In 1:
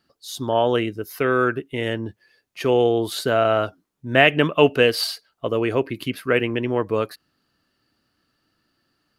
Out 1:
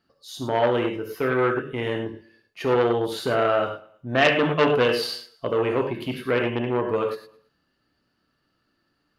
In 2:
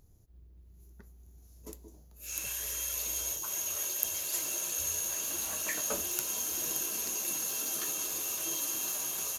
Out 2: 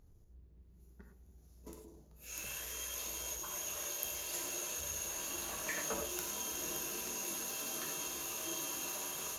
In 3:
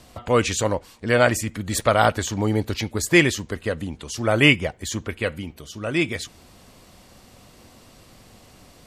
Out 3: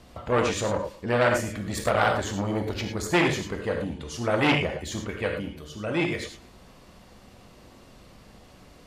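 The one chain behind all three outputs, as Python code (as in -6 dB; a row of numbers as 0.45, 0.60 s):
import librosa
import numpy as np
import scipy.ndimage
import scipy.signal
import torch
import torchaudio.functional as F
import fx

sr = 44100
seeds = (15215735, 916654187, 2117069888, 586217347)

p1 = fx.high_shelf(x, sr, hz=4200.0, db=-8.5)
p2 = fx.notch(p1, sr, hz=8000.0, q=18.0)
p3 = p2 + fx.echo_feedback(p2, sr, ms=110, feedback_pct=41, wet_db=-21, dry=0)
p4 = fx.rev_gated(p3, sr, seeds[0], gate_ms=130, shape='flat', drr_db=2.5)
p5 = fx.transformer_sat(p4, sr, knee_hz=1800.0)
y = F.gain(torch.from_numpy(p5), -2.0).numpy()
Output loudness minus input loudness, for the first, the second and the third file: -2.5, -7.0, -4.5 LU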